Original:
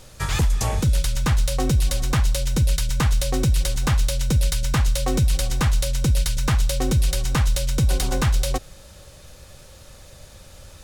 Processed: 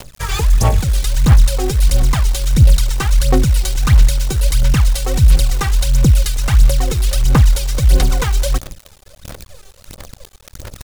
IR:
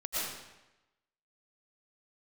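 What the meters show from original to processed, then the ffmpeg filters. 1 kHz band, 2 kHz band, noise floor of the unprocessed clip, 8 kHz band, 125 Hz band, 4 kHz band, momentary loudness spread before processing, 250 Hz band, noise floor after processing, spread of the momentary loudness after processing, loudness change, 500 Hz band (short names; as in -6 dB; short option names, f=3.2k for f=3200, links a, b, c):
+5.0 dB, +4.5 dB, -46 dBFS, +4.5 dB, +7.0 dB, +4.0 dB, 1 LU, +4.5 dB, -45 dBFS, 5 LU, +7.5 dB, +5.0 dB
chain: -af "aphaser=in_gain=1:out_gain=1:delay=2.6:decay=0.7:speed=1.5:type=sinusoidal,acrusher=bits=6:dc=4:mix=0:aa=0.000001,volume=1dB"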